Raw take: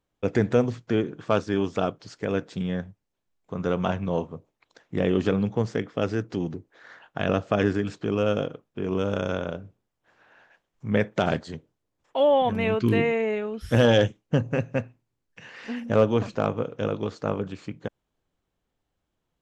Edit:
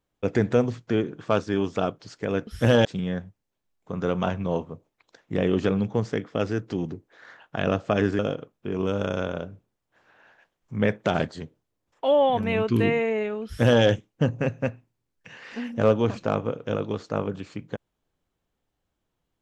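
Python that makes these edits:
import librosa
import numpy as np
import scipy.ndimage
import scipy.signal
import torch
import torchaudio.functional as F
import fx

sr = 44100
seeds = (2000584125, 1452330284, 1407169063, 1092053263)

y = fx.edit(x, sr, fx.cut(start_s=7.81, length_s=0.5),
    fx.duplicate(start_s=13.57, length_s=0.38, to_s=2.47), tone=tone)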